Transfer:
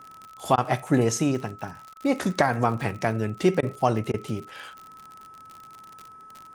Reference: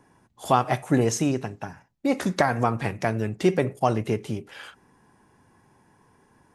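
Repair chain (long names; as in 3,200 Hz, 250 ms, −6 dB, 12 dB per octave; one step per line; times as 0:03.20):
click removal
notch filter 1,300 Hz, Q 30
repair the gap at 0:00.56/0:01.94/0:03.61/0:04.12, 17 ms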